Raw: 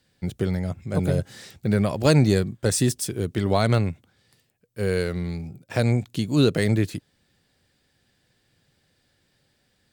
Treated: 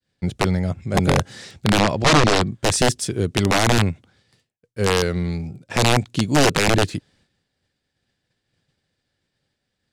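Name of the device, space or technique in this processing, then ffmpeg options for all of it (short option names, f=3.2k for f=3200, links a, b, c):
overflowing digital effects unit: -filter_complex "[0:a]aeval=exprs='(mod(4.73*val(0)+1,2)-1)/4.73':c=same,lowpass=8.3k,asettb=1/sr,asplit=3[a][b][c];[a]atrim=end=1.794[d];[b]atrim=start=1.79:end=2.52,asetpts=PTS-STARTPTS,afade=t=in:d=0.004:c=qsin,afade=t=out:st=0.726:d=0.004:c=qsin,lowpass=6.7k[e];[c]atrim=start=2.516[f];[d][e]acrossfade=d=0.004:c1=hsin:c2=qsin[g];[g][f]acrossfade=d=0.004:c1=qsin:c2=hsin,agate=range=-33dB:threshold=-58dB:ratio=3:detection=peak,volume=5dB"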